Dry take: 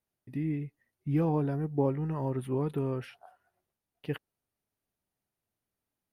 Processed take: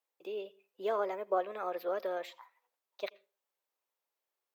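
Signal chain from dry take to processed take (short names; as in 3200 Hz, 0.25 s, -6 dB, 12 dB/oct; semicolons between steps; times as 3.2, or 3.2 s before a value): HPF 330 Hz 24 dB/oct; on a send at -22 dB: reverb RT60 0.40 s, pre-delay 0.104 s; on the sum: speed mistake 33 rpm record played at 45 rpm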